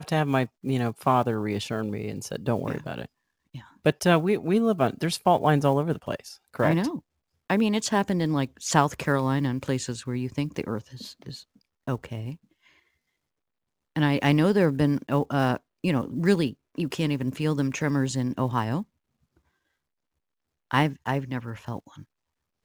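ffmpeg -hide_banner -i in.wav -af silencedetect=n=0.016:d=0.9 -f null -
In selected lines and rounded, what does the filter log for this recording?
silence_start: 12.34
silence_end: 13.96 | silence_duration: 1.62
silence_start: 18.83
silence_end: 20.71 | silence_duration: 1.89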